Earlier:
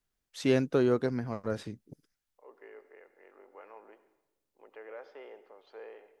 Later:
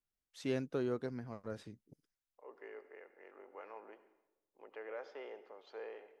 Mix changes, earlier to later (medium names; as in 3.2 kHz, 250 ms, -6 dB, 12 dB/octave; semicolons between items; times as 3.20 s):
first voice -10.5 dB; second voice: remove distance through air 69 m